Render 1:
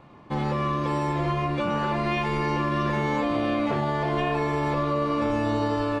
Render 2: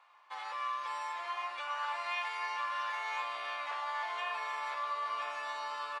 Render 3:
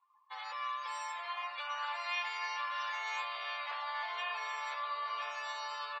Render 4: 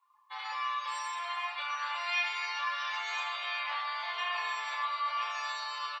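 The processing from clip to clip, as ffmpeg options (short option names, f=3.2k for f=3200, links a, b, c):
-filter_complex "[0:a]highpass=f=920:w=0.5412,highpass=f=920:w=1.3066,asplit=2[a][b];[b]aecho=0:1:1002:0.376[c];[a][c]amix=inputs=2:normalize=0,volume=-6dB"
-af "afftdn=nr=25:nf=-53,crystalizer=i=3.5:c=0,volume=-3.5dB"
-filter_complex "[0:a]highpass=f=870:p=1,asplit=2[a][b];[b]aecho=0:1:30|75|142.5|243.8|395.6:0.631|0.398|0.251|0.158|0.1[c];[a][c]amix=inputs=2:normalize=0,volume=3.5dB"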